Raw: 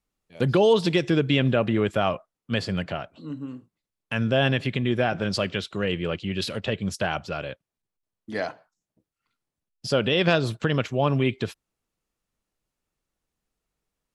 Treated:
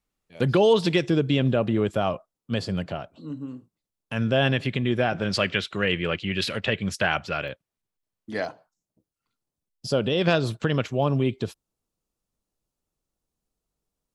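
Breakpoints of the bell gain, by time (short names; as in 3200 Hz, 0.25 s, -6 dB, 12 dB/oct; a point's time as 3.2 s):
bell 2000 Hz 1.4 oct
+1 dB
from 1.06 s -6.5 dB
from 4.17 s 0 dB
from 5.29 s +7.5 dB
from 7.48 s 0 dB
from 8.45 s -8.5 dB
from 10.22 s -2 dB
from 11.03 s -9 dB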